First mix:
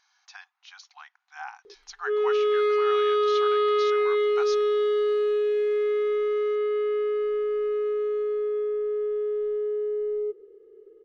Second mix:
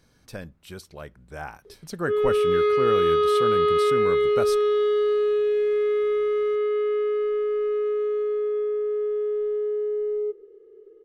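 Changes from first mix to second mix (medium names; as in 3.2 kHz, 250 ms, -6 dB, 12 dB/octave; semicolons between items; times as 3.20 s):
speech: remove brick-wall FIR band-pass 710–6900 Hz; reverb: on, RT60 0.35 s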